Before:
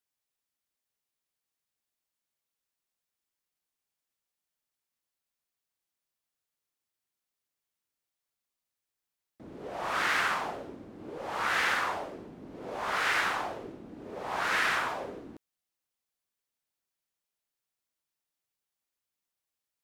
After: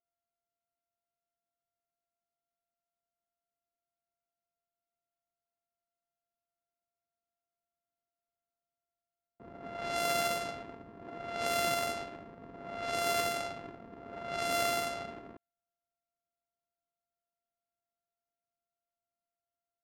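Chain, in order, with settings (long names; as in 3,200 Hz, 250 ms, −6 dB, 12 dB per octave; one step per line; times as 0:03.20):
samples sorted by size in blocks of 64 samples
low-pass that shuts in the quiet parts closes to 1,000 Hz, open at −25.5 dBFS
level −3 dB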